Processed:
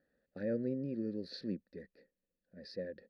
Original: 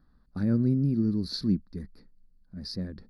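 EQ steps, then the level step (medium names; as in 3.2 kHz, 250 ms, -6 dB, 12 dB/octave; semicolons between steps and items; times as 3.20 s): vowel filter e; +9.0 dB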